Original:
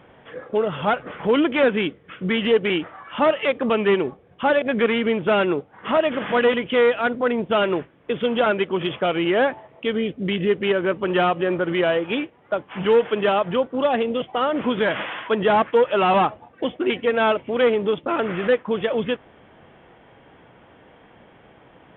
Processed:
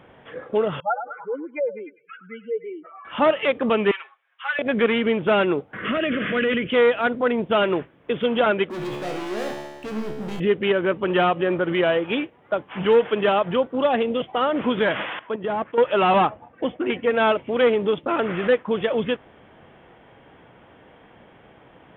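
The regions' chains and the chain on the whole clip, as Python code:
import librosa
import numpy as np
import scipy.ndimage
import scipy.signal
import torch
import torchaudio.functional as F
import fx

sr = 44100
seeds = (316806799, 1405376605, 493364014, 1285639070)

y = fx.chain(x, sr, fx.spec_expand(power=3.7),
    fx.highpass(hz=710.0, slope=12),
    fx.echo_stepped(ms=101, hz=930.0, octaves=0.7, feedback_pct=70, wet_db=-7.0), at=(0.8, 3.05))
y = fx.chain(y, sr, fx.highpass(hz=1300.0, slope=24),
    fx.high_shelf(hz=3400.0, db=-12.0),
    fx.comb(ms=7.4, depth=0.79), at=(3.91, 4.59))
y = fx.chain(y, sr, fx.transient(attack_db=-3, sustain_db=5),
    fx.fixed_phaser(hz=2100.0, stages=4),
    fx.band_squash(depth_pct=70), at=(5.73, 6.7))
y = fx.chain(y, sr, fx.lowpass(hz=1100.0, slope=6),
    fx.leveller(passes=5),
    fx.comb_fb(f0_hz=72.0, decay_s=1.3, harmonics='all', damping=0.0, mix_pct=90), at=(8.7, 10.4))
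y = fx.chain(y, sr, fx.highpass(hz=46.0, slope=12),
    fx.high_shelf(hz=2000.0, db=-9.5),
    fx.level_steps(step_db=12), at=(15.19, 15.78))
y = fx.chain(y, sr, fx.lowpass(hz=2600.0, slope=12),
    fx.notch(hz=390.0, q=10.0), at=(16.29, 17.11))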